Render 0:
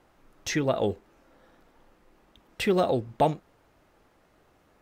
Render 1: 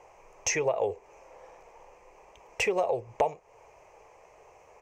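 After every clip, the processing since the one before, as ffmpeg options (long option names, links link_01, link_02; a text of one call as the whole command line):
ffmpeg -i in.wav -af "firequalizer=gain_entry='entry(110,0);entry(260,-13);entry(430,12);entry(650,11);entry(990,14);entry(1400,-3);entry(2400,14);entry(3600,-8);entry(6200,14);entry(10000,-4)':delay=0.05:min_phase=1,acompressor=threshold=-25dB:ratio=4,volume=-1dB" out.wav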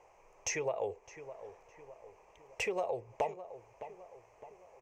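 ffmpeg -i in.wav -filter_complex "[0:a]asplit=2[link_01][link_02];[link_02]adelay=611,lowpass=frequency=2000:poles=1,volume=-12.5dB,asplit=2[link_03][link_04];[link_04]adelay=611,lowpass=frequency=2000:poles=1,volume=0.5,asplit=2[link_05][link_06];[link_06]adelay=611,lowpass=frequency=2000:poles=1,volume=0.5,asplit=2[link_07][link_08];[link_08]adelay=611,lowpass=frequency=2000:poles=1,volume=0.5,asplit=2[link_09][link_10];[link_10]adelay=611,lowpass=frequency=2000:poles=1,volume=0.5[link_11];[link_01][link_03][link_05][link_07][link_09][link_11]amix=inputs=6:normalize=0,volume=-7.5dB" out.wav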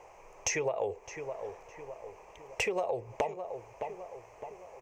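ffmpeg -i in.wav -af "acompressor=threshold=-38dB:ratio=3,volume=8.5dB" out.wav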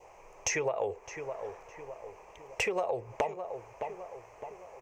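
ffmpeg -i in.wav -af "adynamicequalizer=threshold=0.00251:dfrequency=1400:dqfactor=1.6:tfrequency=1400:tqfactor=1.6:attack=5:release=100:ratio=0.375:range=2.5:mode=boostabove:tftype=bell" out.wav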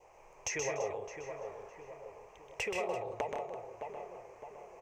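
ffmpeg -i in.wav -af "aecho=1:1:127|155|183|292|337:0.562|0.422|0.237|0.106|0.2,volume=-6dB" out.wav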